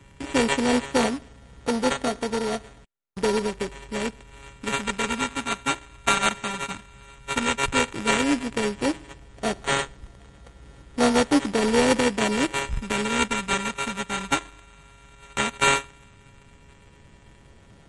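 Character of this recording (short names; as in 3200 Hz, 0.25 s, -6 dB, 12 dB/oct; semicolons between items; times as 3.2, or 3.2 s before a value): a buzz of ramps at a fixed pitch in blocks of 32 samples; phasing stages 2, 0.12 Hz, lowest notch 450–2200 Hz; aliases and images of a low sample rate 5100 Hz, jitter 0%; MP3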